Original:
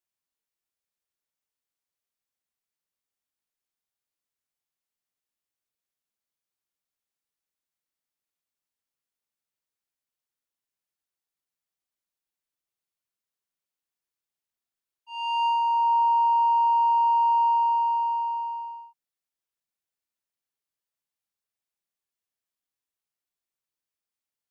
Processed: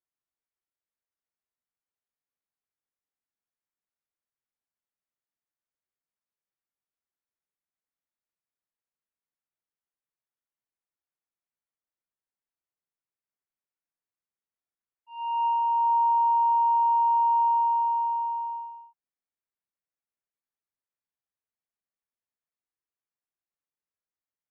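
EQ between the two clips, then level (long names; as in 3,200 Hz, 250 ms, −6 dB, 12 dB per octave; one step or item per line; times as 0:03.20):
dynamic equaliser 1,000 Hz, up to +3 dB, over −34 dBFS, Q 1.4
low-pass filter 2,200 Hz 24 dB per octave
−4.0 dB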